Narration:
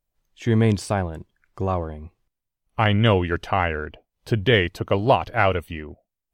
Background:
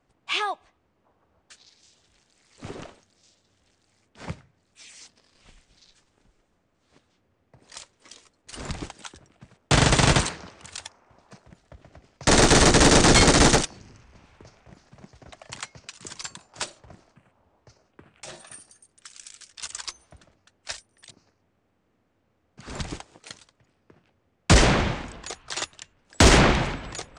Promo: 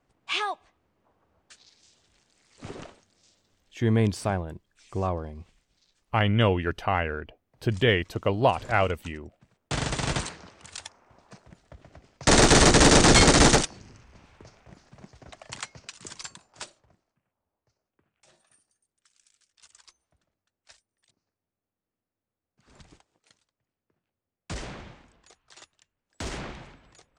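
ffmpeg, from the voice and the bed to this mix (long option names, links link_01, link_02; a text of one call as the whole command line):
ffmpeg -i stem1.wav -i stem2.wav -filter_complex "[0:a]adelay=3350,volume=-4dB[link_01];[1:a]volume=8dB,afade=type=out:start_time=3.43:duration=0.49:silence=0.375837,afade=type=in:start_time=10.04:duration=1:silence=0.316228,afade=type=out:start_time=15.86:duration=1.14:silence=0.105925[link_02];[link_01][link_02]amix=inputs=2:normalize=0" out.wav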